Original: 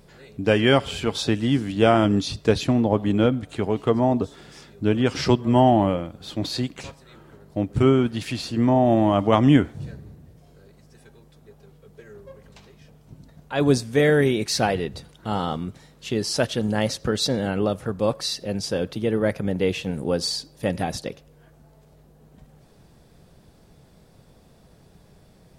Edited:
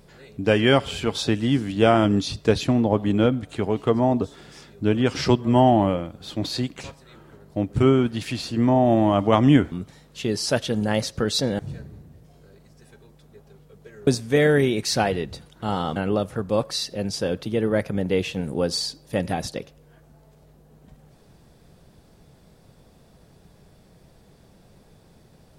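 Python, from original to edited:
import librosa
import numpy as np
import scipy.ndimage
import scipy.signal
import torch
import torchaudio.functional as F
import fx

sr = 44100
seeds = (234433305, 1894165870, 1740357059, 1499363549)

y = fx.edit(x, sr, fx.cut(start_s=12.2, length_s=1.5),
    fx.move(start_s=15.59, length_s=1.87, to_s=9.72), tone=tone)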